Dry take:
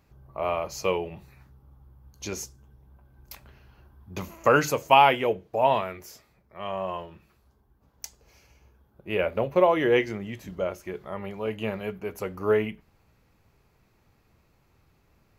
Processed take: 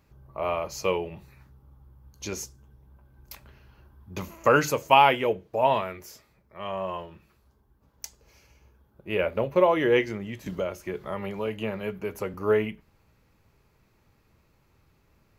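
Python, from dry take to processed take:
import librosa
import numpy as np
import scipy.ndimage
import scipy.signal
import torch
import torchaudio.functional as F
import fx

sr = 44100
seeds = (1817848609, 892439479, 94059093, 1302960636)

y = fx.notch(x, sr, hz=730.0, q=12.0)
y = fx.band_squash(y, sr, depth_pct=70, at=(10.46, 12.34))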